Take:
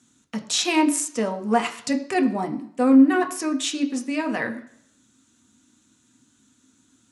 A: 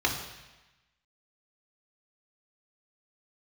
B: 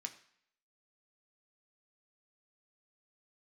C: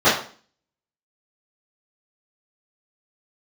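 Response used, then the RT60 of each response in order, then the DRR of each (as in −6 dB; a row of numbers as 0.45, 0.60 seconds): B; 1.1, 0.60, 0.45 seconds; −0.5, 4.0, −17.0 decibels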